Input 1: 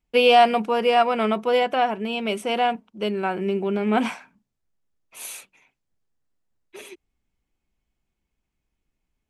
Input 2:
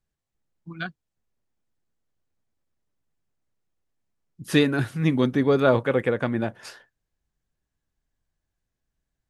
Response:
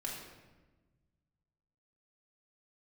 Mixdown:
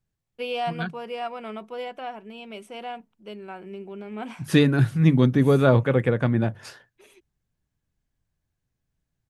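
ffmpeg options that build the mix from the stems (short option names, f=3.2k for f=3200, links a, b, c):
-filter_complex "[0:a]adelay=250,volume=-13.5dB[a];[1:a]equalizer=f=120:w=0.89:g=10,volume=-1dB[b];[a][b]amix=inputs=2:normalize=0,bandreject=f=50:t=h:w=6,bandreject=f=100:t=h:w=6,bandreject=f=150:t=h:w=6"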